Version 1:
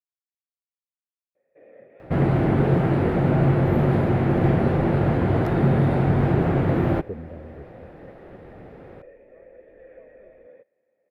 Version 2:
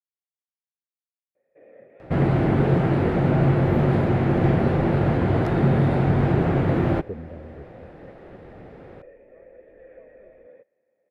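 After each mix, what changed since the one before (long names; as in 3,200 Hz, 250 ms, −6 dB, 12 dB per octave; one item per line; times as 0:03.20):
second sound: add high-shelf EQ 4,900 Hz +10.5 dB
master: add high-frequency loss of the air 67 metres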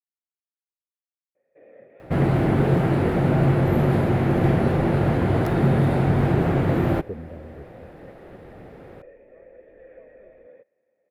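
master: remove high-frequency loss of the air 67 metres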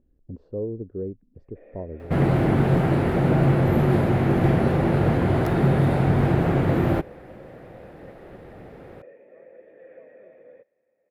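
speech: entry −2.05 s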